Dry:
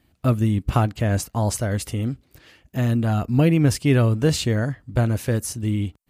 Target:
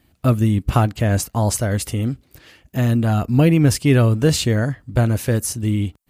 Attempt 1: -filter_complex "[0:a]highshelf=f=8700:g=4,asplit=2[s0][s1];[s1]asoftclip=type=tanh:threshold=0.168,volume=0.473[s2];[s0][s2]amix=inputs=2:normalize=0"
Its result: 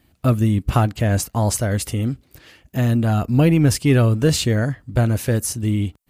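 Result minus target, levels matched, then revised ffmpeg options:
saturation: distortion +11 dB
-filter_complex "[0:a]highshelf=f=8700:g=4,asplit=2[s0][s1];[s1]asoftclip=type=tanh:threshold=0.447,volume=0.473[s2];[s0][s2]amix=inputs=2:normalize=0"

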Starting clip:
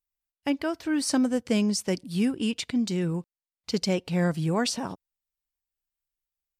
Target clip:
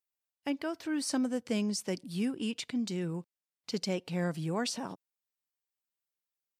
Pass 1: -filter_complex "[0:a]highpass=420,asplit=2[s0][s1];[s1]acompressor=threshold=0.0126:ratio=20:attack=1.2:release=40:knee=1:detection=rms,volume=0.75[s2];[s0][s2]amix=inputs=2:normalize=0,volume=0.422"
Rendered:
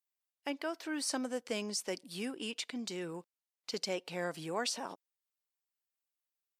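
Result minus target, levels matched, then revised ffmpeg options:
125 Hz band -8.5 dB
-filter_complex "[0:a]highpass=140,asplit=2[s0][s1];[s1]acompressor=threshold=0.0126:ratio=20:attack=1.2:release=40:knee=1:detection=rms,volume=0.75[s2];[s0][s2]amix=inputs=2:normalize=0,volume=0.422"

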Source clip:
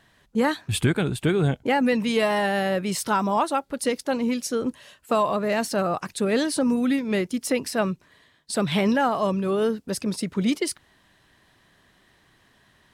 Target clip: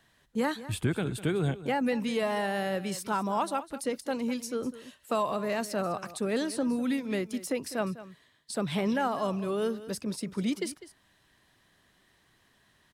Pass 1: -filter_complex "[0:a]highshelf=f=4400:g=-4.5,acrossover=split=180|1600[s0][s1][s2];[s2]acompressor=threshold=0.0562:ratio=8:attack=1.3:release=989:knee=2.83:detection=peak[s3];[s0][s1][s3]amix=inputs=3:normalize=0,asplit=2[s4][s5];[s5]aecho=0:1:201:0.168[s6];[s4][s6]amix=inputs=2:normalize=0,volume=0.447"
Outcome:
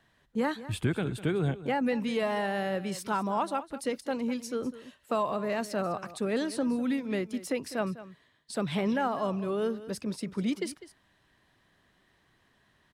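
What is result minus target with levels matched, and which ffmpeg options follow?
8 kHz band -3.5 dB
-filter_complex "[0:a]highshelf=f=4400:g=5,acrossover=split=180|1600[s0][s1][s2];[s2]acompressor=threshold=0.0562:ratio=8:attack=1.3:release=989:knee=2.83:detection=peak[s3];[s0][s1][s3]amix=inputs=3:normalize=0,asplit=2[s4][s5];[s5]aecho=0:1:201:0.168[s6];[s4][s6]amix=inputs=2:normalize=0,volume=0.447"

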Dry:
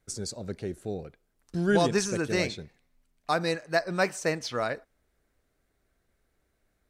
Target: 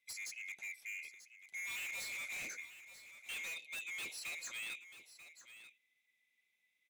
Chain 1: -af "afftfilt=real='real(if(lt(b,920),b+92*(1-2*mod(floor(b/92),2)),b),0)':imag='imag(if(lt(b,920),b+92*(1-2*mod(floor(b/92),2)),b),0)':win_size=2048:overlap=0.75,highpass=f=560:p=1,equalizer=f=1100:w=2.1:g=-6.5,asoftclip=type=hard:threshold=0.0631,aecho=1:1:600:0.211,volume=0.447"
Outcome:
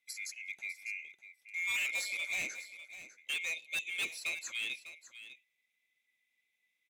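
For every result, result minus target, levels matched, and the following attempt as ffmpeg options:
echo 339 ms early; hard clipper: distortion -7 dB
-af "afftfilt=real='real(if(lt(b,920),b+92*(1-2*mod(floor(b/92),2)),b),0)':imag='imag(if(lt(b,920),b+92*(1-2*mod(floor(b/92),2)),b),0)':win_size=2048:overlap=0.75,highpass=f=560:p=1,equalizer=f=1100:w=2.1:g=-6.5,asoftclip=type=hard:threshold=0.0631,aecho=1:1:939:0.211,volume=0.447"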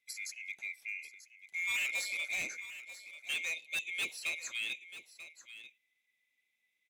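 hard clipper: distortion -7 dB
-af "afftfilt=real='real(if(lt(b,920),b+92*(1-2*mod(floor(b/92),2)),b),0)':imag='imag(if(lt(b,920),b+92*(1-2*mod(floor(b/92),2)),b),0)':win_size=2048:overlap=0.75,highpass=f=560:p=1,equalizer=f=1100:w=2.1:g=-6.5,asoftclip=type=hard:threshold=0.0178,aecho=1:1:939:0.211,volume=0.447"

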